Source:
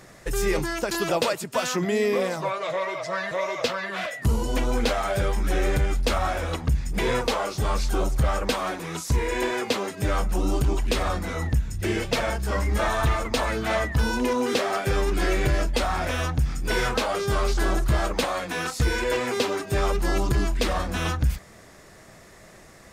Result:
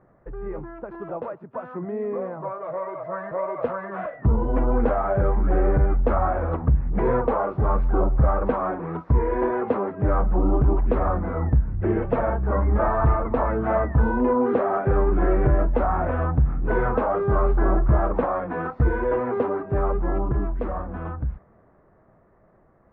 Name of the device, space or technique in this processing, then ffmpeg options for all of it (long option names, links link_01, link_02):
action camera in a waterproof case: -af "lowpass=frequency=1300:width=0.5412,lowpass=frequency=1300:width=1.3066,dynaudnorm=framelen=370:gausssize=17:maxgain=16dB,volume=-8dB" -ar 32000 -c:a aac -b:a 48k